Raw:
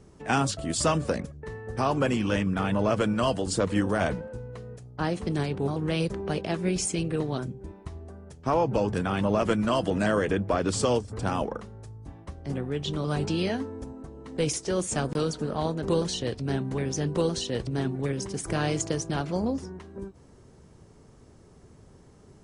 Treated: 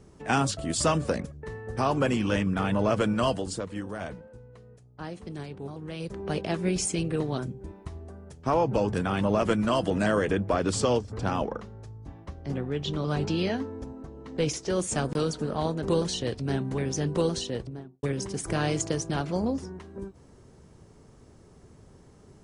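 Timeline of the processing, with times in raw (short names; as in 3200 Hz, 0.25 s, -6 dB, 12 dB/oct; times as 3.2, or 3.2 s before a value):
3.27–6.37 dip -10 dB, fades 0.38 s
10.8–14.7 bell 9000 Hz -10.5 dB 0.49 oct
17.32–18.03 studio fade out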